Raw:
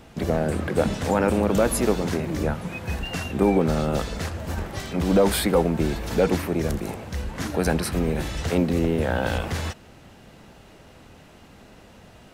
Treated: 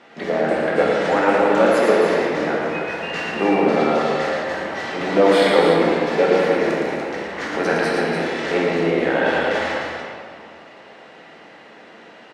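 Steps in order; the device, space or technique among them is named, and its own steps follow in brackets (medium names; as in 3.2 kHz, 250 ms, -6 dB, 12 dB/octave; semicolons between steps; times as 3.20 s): station announcement (band-pass 380–4100 Hz; peaking EQ 1.9 kHz +6.5 dB 0.29 oct; loudspeakers at several distances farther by 39 m -5 dB, 100 m -7 dB; reverberation RT60 2.1 s, pre-delay 4 ms, DRR -2.5 dB); trim +2 dB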